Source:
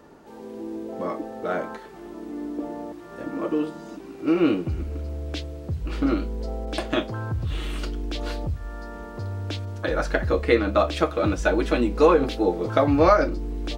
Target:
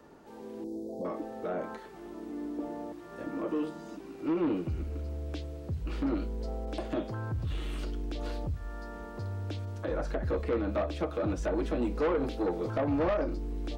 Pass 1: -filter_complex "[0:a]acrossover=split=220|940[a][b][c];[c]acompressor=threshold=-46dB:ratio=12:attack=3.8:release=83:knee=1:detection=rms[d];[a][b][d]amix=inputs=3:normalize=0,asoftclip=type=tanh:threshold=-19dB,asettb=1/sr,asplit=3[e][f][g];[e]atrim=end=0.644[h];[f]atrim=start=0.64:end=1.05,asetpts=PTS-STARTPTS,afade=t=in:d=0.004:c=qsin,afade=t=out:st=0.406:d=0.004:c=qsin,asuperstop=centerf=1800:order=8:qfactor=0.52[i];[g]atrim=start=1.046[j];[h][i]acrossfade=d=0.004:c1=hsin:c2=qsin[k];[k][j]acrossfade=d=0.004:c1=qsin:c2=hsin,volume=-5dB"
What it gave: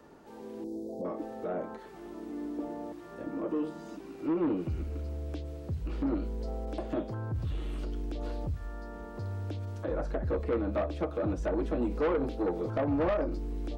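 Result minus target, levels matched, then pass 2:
compressor: peak gain reduction +7 dB
-filter_complex "[0:a]acrossover=split=220|940[a][b][c];[c]acompressor=threshold=-38.5dB:ratio=12:attack=3.8:release=83:knee=1:detection=rms[d];[a][b][d]amix=inputs=3:normalize=0,asoftclip=type=tanh:threshold=-19dB,asettb=1/sr,asplit=3[e][f][g];[e]atrim=end=0.644[h];[f]atrim=start=0.64:end=1.05,asetpts=PTS-STARTPTS,afade=t=in:d=0.004:c=qsin,afade=t=out:st=0.406:d=0.004:c=qsin,asuperstop=centerf=1800:order=8:qfactor=0.52[i];[g]atrim=start=1.046[j];[h][i]acrossfade=d=0.004:c1=hsin:c2=qsin[k];[k][j]acrossfade=d=0.004:c1=qsin:c2=hsin,volume=-5dB"

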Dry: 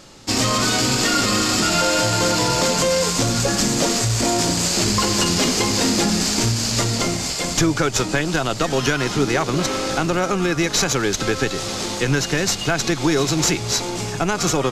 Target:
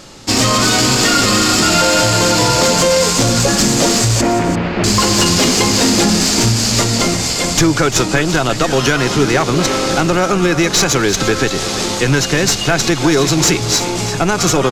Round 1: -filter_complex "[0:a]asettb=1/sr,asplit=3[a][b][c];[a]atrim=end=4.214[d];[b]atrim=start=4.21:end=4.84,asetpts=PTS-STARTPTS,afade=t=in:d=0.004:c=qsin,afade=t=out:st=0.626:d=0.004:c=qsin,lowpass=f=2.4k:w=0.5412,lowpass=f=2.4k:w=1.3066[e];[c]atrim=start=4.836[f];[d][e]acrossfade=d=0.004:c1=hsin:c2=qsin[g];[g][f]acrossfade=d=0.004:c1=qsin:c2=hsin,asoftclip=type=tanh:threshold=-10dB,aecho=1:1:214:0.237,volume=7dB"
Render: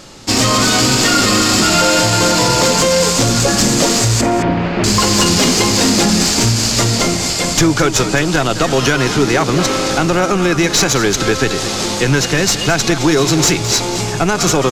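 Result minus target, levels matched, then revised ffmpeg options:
echo 0.129 s early
-filter_complex "[0:a]asettb=1/sr,asplit=3[a][b][c];[a]atrim=end=4.214[d];[b]atrim=start=4.21:end=4.84,asetpts=PTS-STARTPTS,afade=t=in:d=0.004:c=qsin,afade=t=out:st=0.626:d=0.004:c=qsin,lowpass=f=2.4k:w=0.5412,lowpass=f=2.4k:w=1.3066[e];[c]atrim=start=4.836[f];[d][e]acrossfade=d=0.004:c1=hsin:c2=qsin[g];[g][f]acrossfade=d=0.004:c1=qsin:c2=hsin,asoftclip=type=tanh:threshold=-10dB,aecho=1:1:343:0.237,volume=7dB"

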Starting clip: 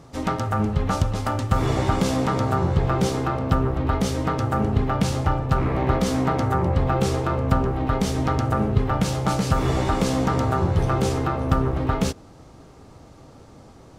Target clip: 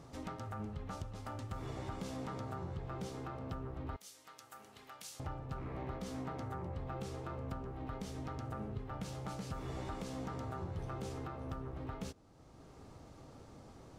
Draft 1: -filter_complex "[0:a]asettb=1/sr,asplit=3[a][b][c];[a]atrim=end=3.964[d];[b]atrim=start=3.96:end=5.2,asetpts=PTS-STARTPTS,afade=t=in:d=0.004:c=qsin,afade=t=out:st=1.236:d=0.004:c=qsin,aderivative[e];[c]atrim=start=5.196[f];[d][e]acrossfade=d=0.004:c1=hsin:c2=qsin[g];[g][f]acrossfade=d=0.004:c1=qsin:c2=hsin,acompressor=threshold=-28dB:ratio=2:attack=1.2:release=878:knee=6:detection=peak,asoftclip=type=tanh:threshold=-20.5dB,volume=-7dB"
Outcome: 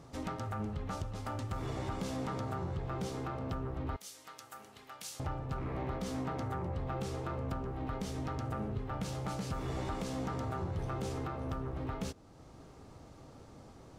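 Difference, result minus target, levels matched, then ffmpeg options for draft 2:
compressor: peak gain reduction -5.5 dB
-filter_complex "[0:a]asettb=1/sr,asplit=3[a][b][c];[a]atrim=end=3.964[d];[b]atrim=start=3.96:end=5.2,asetpts=PTS-STARTPTS,afade=t=in:d=0.004:c=qsin,afade=t=out:st=1.236:d=0.004:c=qsin,aderivative[e];[c]atrim=start=5.196[f];[d][e]acrossfade=d=0.004:c1=hsin:c2=qsin[g];[g][f]acrossfade=d=0.004:c1=qsin:c2=hsin,acompressor=threshold=-39.5dB:ratio=2:attack=1.2:release=878:knee=6:detection=peak,asoftclip=type=tanh:threshold=-20.5dB,volume=-7dB"

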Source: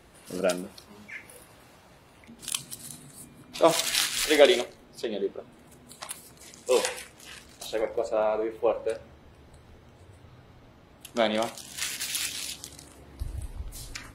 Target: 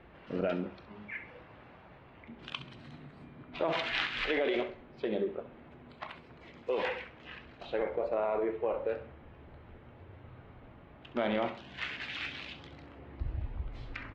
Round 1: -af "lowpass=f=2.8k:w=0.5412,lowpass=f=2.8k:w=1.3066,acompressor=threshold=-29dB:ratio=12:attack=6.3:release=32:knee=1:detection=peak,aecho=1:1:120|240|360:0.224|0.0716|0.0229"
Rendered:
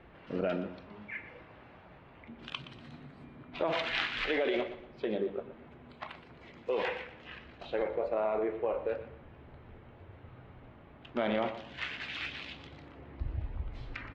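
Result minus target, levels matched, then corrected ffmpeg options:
echo 53 ms late
-af "lowpass=f=2.8k:w=0.5412,lowpass=f=2.8k:w=1.3066,acompressor=threshold=-29dB:ratio=12:attack=6.3:release=32:knee=1:detection=peak,aecho=1:1:67|134|201:0.224|0.0716|0.0229"

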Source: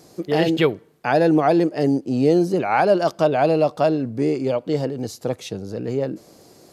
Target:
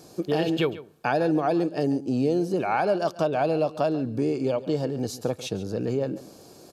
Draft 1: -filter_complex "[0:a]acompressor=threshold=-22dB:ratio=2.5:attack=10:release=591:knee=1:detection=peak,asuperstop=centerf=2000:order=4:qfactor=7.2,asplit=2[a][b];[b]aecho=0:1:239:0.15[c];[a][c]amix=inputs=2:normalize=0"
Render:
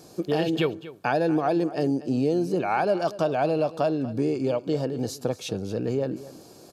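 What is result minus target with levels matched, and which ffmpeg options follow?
echo 99 ms late
-filter_complex "[0:a]acompressor=threshold=-22dB:ratio=2.5:attack=10:release=591:knee=1:detection=peak,asuperstop=centerf=2000:order=4:qfactor=7.2,asplit=2[a][b];[b]aecho=0:1:140:0.15[c];[a][c]amix=inputs=2:normalize=0"

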